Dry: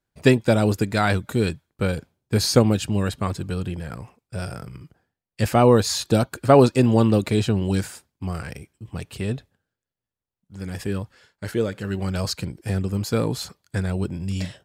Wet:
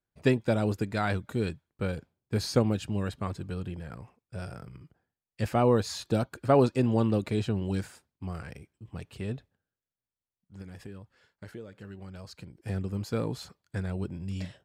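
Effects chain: high shelf 4600 Hz -7.5 dB; 10.61–12.63 compressor 4:1, threshold -34 dBFS, peak gain reduction 14 dB; gain -8 dB

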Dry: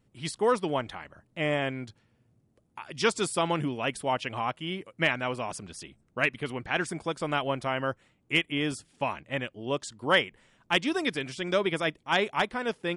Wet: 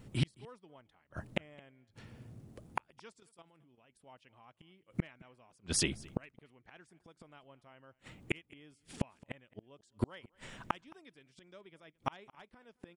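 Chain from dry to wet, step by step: low shelf 250 Hz +3 dB; 3.2–3.97 level quantiser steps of 12 dB; flipped gate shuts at -30 dBFS, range -42 dB; on a send: echo 0.217 s -23.5 dB; on the sum: gain +12.5 dB

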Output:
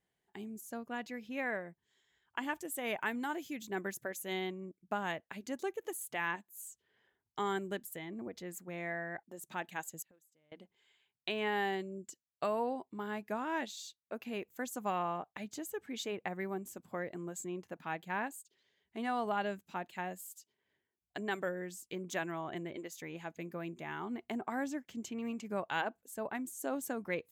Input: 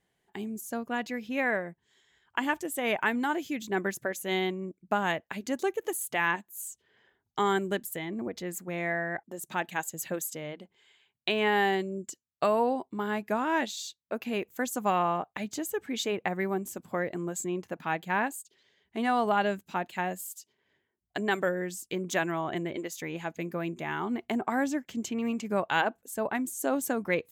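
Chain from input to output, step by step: 2.55–4.33 high shelf 7800 Hz +6.5 dB; 10.02–10.52 flipped gate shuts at -28 dBFS, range -27 dB; gain -8.5 dB

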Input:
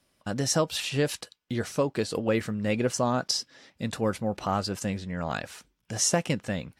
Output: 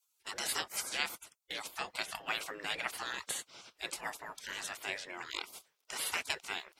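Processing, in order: bell 1800 Hz +13 dB 0.29 oct; spectral gate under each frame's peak -20 dB weak; low shelf 140 Hz -8 dB; gain +4 dB

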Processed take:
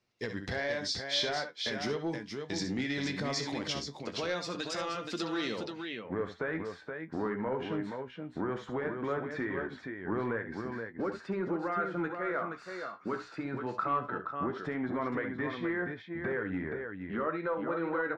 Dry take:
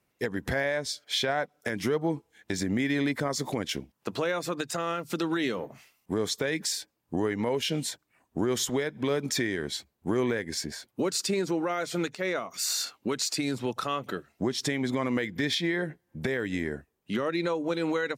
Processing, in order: flange 0.19 Hz, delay 8.2 ms, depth 8.3 ms, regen +54%; tapped delay 62/72/474 ms -13/-13/-6.5 dB; soft clip -22.5 dBFS, distortion -21 dB; low-pass sweep 5000 Hz -> 1400 Hz, 5.66–6.31; gain -1.5 dB

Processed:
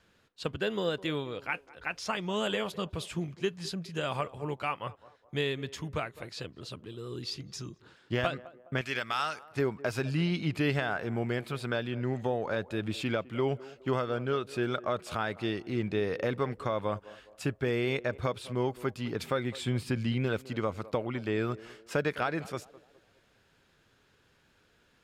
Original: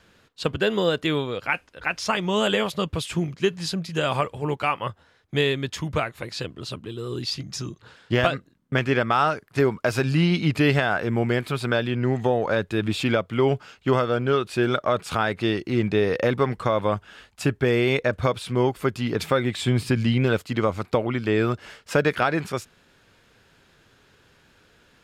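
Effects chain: 8.81–9.45 tilt shelf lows -10 dB, about 1500 Hz; narrowing echo 0.207 s, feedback 43%, band-pass 530 Hz, level -17 dB; gain -9 dB

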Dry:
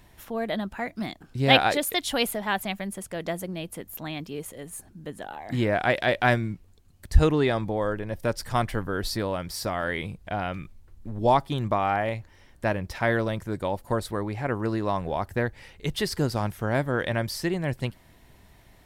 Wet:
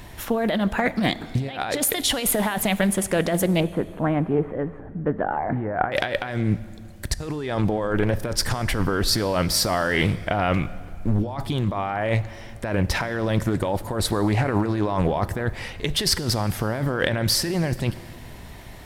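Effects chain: 3.6–5.92 LPF 1600 Hz 24 dB/oct; negative-ratio compressor -32 dBFS, ratio -1; plate-style reverb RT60 2.3 s, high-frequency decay 0.8×, DRR 15 dB; Doppler distortion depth 0.26 ms; gain +8.5 dB

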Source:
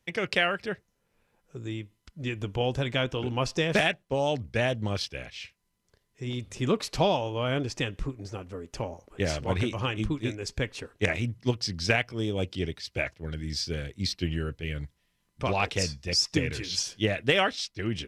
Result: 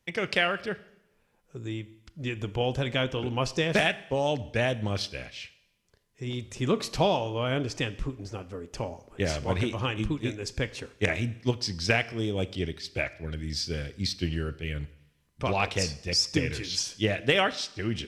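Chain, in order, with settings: Schroeder reverb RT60 0.84 s, combs from 27 ms, DRR 16 dB

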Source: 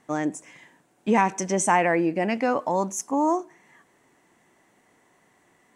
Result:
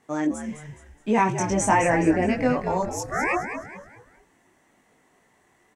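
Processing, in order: 1.18–2.27 low shelf 430 Hz +6.5 dB; 2.82–3.32 ring modulator 360 Hz -> 1600 Hz; chorus voices 4, 0.42 Hz, delay 21 ms, depth 2.4 ms; frequency-shifting echo 0.21 s, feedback 38%, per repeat -79 Hz, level -8.5 dB; gain +2 dB

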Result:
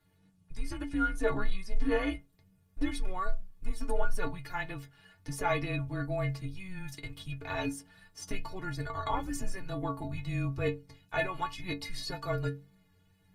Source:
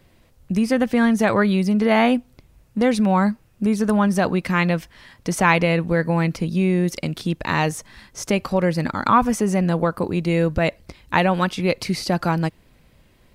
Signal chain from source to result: metallic resonator 97 Hz, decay 0.5 s, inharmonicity 0.03; de-hum 194.5 Hz, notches 2; frequency shift -190 Hz; wow and flutter 22 cents; Opus 32 kbps 48000 Hz

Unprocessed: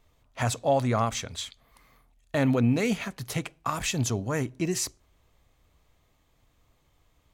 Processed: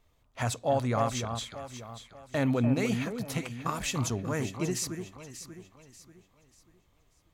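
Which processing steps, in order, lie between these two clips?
echo with dull and thin repeats by turns 0.294 s, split 1300 Hz, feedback 59%, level -6.5 dB; gain -3.5 dB

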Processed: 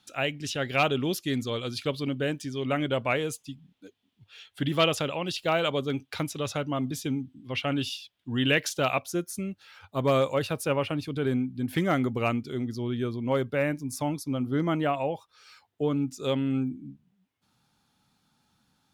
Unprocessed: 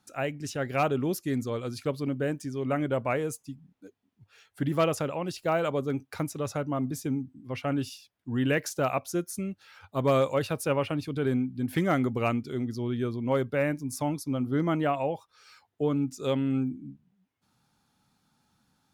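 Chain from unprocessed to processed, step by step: bell 3300 Hz +14.5 dB 0.94 oct, from 9.02 s +4 dB

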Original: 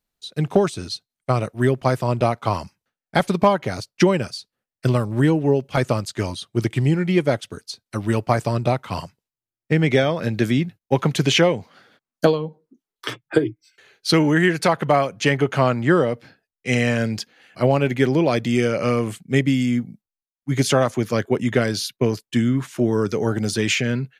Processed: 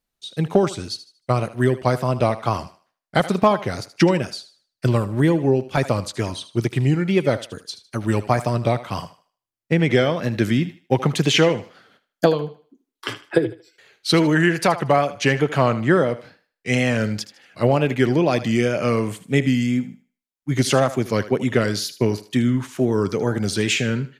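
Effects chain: wow and flutter 93 cents; thinning echo 77 ms, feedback 31%, high-pass 310 Hz, level -14 dB

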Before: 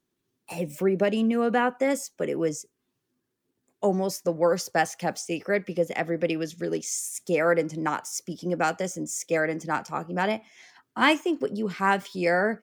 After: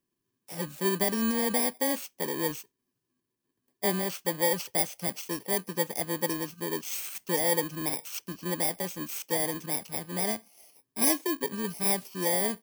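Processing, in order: FFT order left unsorted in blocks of 32 samples; gain -4 dB

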